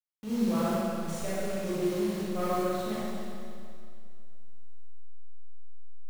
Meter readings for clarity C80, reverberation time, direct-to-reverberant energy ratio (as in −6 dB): −3.5 dB, 2.3 s, −10.0 dB